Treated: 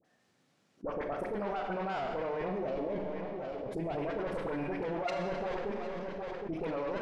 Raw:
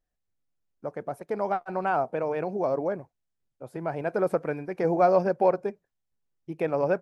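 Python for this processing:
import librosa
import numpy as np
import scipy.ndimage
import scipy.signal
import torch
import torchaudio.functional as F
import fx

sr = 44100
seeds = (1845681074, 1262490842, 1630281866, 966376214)

y = scipy.signal.sosfilt(scipy.signal.butter(4, 140.0, 'highpass', fs=sr, output='sos'), x)
y = fx.tube_stage(y, sr, drive_db=27.0, bias=0.65)
y = fx.peak_eq(y, sr, hz=1300.0, db=-14.0, octaves=0.95, at=(2.54, 3.95))
y = fx.echo_feedback(y, sr, ms=765, feedback_pct=24, wet_db=-20.5)
y = fx.level_steps(y, sr, step_db=14)
y = fx.air_absorb(y, sr, metres=78.0)
y = fx.dispersion(y, sr, late='highs', ms=47.0, hz=1100.0)
y = fx.noise_reduce_blind(y, sr, reduce_db=13)
y = fx.rev_schroeder(y, sr, rt60_s=1.3, comb_ms=28, drr_db=4.5)
y = fx.env_flatten(y, sr, amount_pct=70)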